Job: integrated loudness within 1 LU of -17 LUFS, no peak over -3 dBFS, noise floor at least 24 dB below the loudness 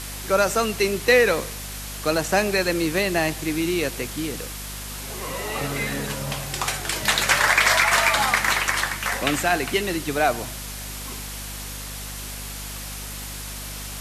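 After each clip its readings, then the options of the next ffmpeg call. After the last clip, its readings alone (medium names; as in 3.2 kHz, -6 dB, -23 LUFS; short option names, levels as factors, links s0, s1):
hum 50 Hz; highest harmonic 250 Hz; hum level -35 dBFS; noise floor -34 dBFS; noise floor target -47 dBFS; loudness -23.0 LUFS; peak level -6.0 dBFS; loudness target -17.0 LUFS
-> -af "bandreject=f=50:t=h:w=6,bandreject=f=100:t=h:w=6,bandreject=f=150:t=h:w=6,bandreject=f=200:t=h:w=6,bandreject=f=250:t=h:w=6"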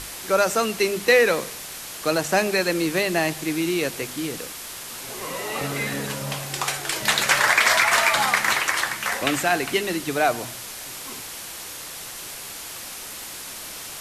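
hum not found; noise floor -36 dBFS; noise floor target -46 dBFS
-> -af "afftdn=nr=10:nf=-36"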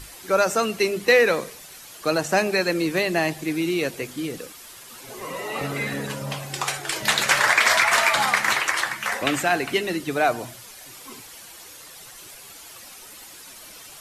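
noise floor -44 dBFS; noise floor target -46 dBFS
-> -af "afftdn=nr=6:nf=-44"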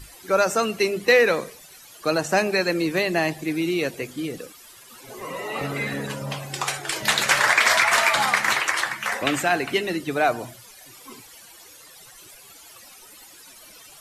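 noise floor -47 dBFS; loudness -22.0 LUFS; peak level -6.0 dBFS; loudness target -17.0 LUFS
-> -af "volume=1.78,alimiter=limit=0.708:level=0:latency=1"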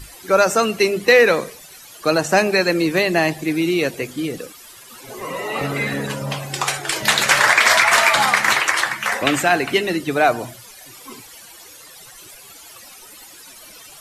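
loudness -17.0 LUFS; peak level -3.0 dBFS; noise floor -42 dBFS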